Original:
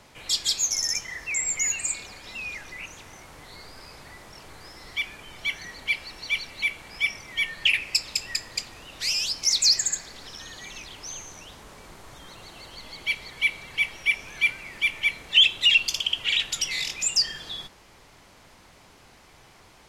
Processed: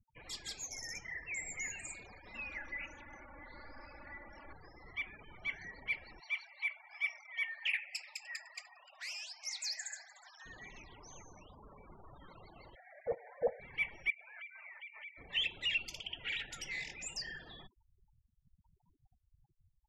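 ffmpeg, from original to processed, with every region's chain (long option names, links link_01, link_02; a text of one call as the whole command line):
ffmpeg -i in.wav -filter_complex "[0:a]asettb=1/sr,asplit=3[link_01][link_02][link_03];[link_01]atrim=end=2.344[link_04];[link_02]atrim=start=2.34:end=4.53,asetpts=PTS-STARTPTS,afade=type=in:duration=0.004:curve=qsin,afade=type=out:start_time=2.186:duration=0.004:curve=qsin,equalizer=frequency=2200:width_type=o:width=2.1:gain=3,aecho=1:1:3.5:0.57,atrim=end_sample=96579[link_05];[link_03]atrim=start=4.526[link_06];[link_04][link_05]acrossfade=duration=0.004:curve1=hsin:curve2=qsin[link_07];[link_07][link_06]acrossfade=duration=0.004:curve1=qsin:curve2=hsin,asettb=1/sr,asplit=3[link_08][link_09][link_10];[link_08]atrim=end=6.204[link_11];[link_09]atrim=start=6.2:end=10.46,asetpts=PTS-STARTPTS,afade=type=in:duration=0.004:curve=qsin,afade=type=out:start_time=4.256:duration=0.004:curve=qsin,highpass=frequency=590:width=0.5412,highpass=frequency=590:width=1.3066,aecho=1:1:300|600|900:0.1|0.035|0.0123,atrim=end_sample=187866[link_12];[link_10]atrim=start=10.456[link_13];[link_11][link_12]acrossfade=duration=0.004:curve1=hsin:curve2=qsin[link_14];[link_14][link_13]acrossfade=duration=0.004:curve1=qsin:curve2=hsin,asettb=1/sr,asplit=3[link_15][link_16][link_17];[link_15]atrim=end=12.754[link_18];[link_16]atrim=start=12.75:end=13.6,asetpts=PTS-STARTPTS,afade=type=in:duration=0.004:curve=qsin,afade=type=out:start_time=0.846:duration=0.004:curve=qsin,highpass=frequency=430:width=0.5412,highpass=frequency=430:width=1.3066,lowpass=frequency=2400:width_type=q:width=0.5098,lowpass=frequency=2400:width_type=q:width=0.6013,lowpass=frequency=2400:width_type=q:width=0.9,lowpass=frequency=2400:width_type=q:width=2.563,afreqshift=-2800[link_19];[link_17]atrim=start=13.596[link_20];[link_18][link_19]acrossfade=duration=0.004:curve1=hsin:curve2=qsin[link_21];[link_21][link_20]acrossfade=duration=0.004:curve1=qsin:curve2=hsin,asettb=1/sr,asplit=3[link_22][link_23][link_24];[link_22]atrim=end=14.104[link_25];[link_23]atrim=start=14.1:end=15.18,asetpts=PTS-STARTPTS,afade=type=in:duration=0.004:curve=qsin,afade=type=out:start_time=1.076:duration=0.004:curve=qsin,highpass=220,acrossover=split=450 3700:gain=0.0891 1 0.0708[link_26][link_27][link_28];[link_26][link_27][link_28]amix=inputs=3:normalize=0,acompressor=threshold=-35dB:ratio=8:attack=3.2:release=140:knee=1:detection=peak[link_29];[link_24]atrim=start=15.176[link_30];[link_25][link_29]acrossfade=duration=0.004:curve1=hsin:curve2=qsin[link_31];[link_31][link_30]acrossfade=duration=0.004:curve1=qsin:curve2=hsin,adynamicequalizer=threshold=0.00224:dfrequency=1100:dqfactor=4.6:tfrequency=1100:tqfactor=4.6:attack=5:release=100:ratio=0.375:range=3.5:mode=cutabove:tftype=bell,afftfilt=real='re*gte(hypot(re,im),0.01)':imag='im*gte(hypot(re,im),0.01)':win_size=1024:overlap=0.75,highshelf=frequency=2500:width_type=q:width=1.5:gain=-11,volume=-7.5dB" out.wav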